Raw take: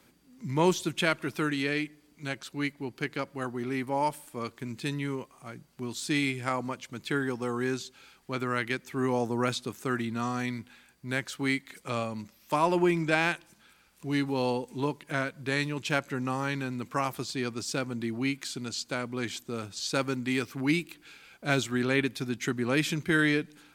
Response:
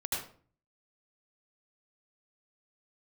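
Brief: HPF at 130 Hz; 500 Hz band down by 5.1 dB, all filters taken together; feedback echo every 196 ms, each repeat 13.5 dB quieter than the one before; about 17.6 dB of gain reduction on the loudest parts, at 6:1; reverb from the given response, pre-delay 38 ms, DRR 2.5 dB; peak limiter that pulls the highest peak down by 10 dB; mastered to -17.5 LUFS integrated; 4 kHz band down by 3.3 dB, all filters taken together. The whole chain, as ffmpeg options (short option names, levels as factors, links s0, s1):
-filter_complex "[0:a]highpass=130,equalizer=f=500:t=o:g=-7,equalizer=f=4000:t=o:g=-4,acompressor=threshold=0.00794:ratio=6,alimiter=level_in=3.76:limit=0.0631:level=0:latency=1,volume=0.266,aecho=1:1:196|392:0.211|0.0444,asplit=2[s0][s1];[1:a]atrim=start_sample=2205,adelay=38[s2];[s1][s2]afir=irnorm=-1:irlink=0,volume=0.447[s3];[s0][s3]amix=inputs=2:normalize=0,volume=23.7"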